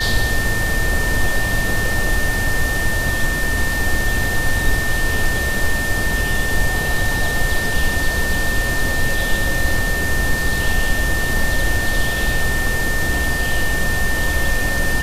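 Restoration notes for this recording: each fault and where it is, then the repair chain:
tone 1800 Hz -21 dBFS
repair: notch 1800 Hz, Q 30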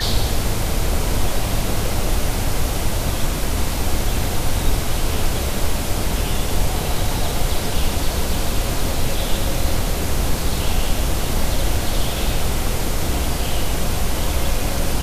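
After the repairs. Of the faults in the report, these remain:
none

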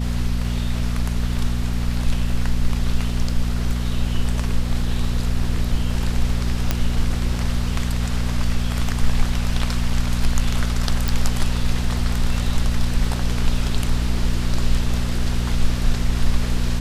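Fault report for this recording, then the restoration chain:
hum 60 Hz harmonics 4 -23 dBFS
6.71 pop -4 dBFS
11.08 pop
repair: de-click; de-hum 60 Hz, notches 4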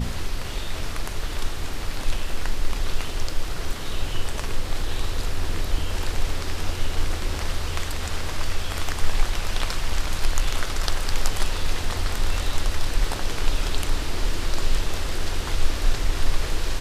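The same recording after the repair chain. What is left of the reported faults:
none

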